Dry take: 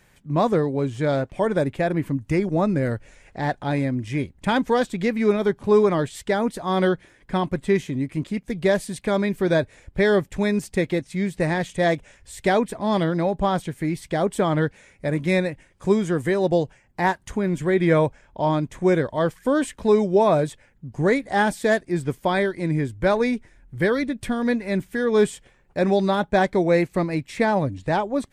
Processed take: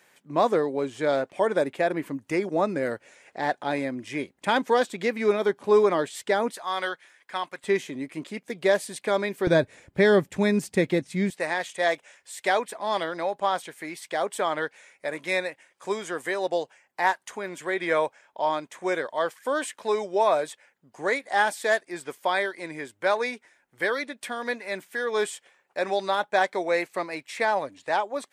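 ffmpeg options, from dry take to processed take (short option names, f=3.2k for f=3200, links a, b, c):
-af "asetnsamples=n=441:p=0,asendcmd='6.53 highpass f 960;7.64 highpass f 390;9.47 highpass f 150;11.3 highpass f 640',highpass=360"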